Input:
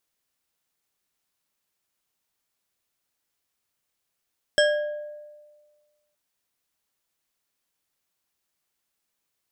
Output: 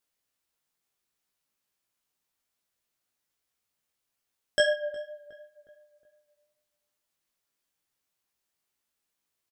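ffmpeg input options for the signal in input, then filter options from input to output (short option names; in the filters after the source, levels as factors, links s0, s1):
-f lavfi -i "aevalsrc='0.158*pow(10,-3*t/1.54)*sin(2*PI*596*t)+0.112*pow(10,-3*t/0.757)*sin(2*PI*1643.2*t)+0.0794*pow(10,-3*t/0.473)*sin(2*PI*3220.8*t)+0.0562*pow(10,-3*t/0.333)*sin(2*PI*5324.1*t)+0.0398*pow(10,-3*t/0.251)*sin(2*PI*7950.6*t)':d=1.57:s=44100"
-filter_complex "[0:a]flanger=delay=16:depth=2.5:speed=2.3,asplit=2[s0][s1];[s1]adelay=363,lowpass=f=1700:p=1,volume=0.141,asplit=2[s2][s3];[s3]adelay=363,lowpass=f=1700:p=1,volume=0.48,asplit=2[s4][s5];[s5]adelay=363,lowpass=f=1700:p=1,volume=0.48,asplit=2[s6][s7];[s7]adelay=363,lowpass=f=1700:p=1,volume=0.48[s8];[s0][s2][s4][s6][s8]amix=inputs=5:normalize=0"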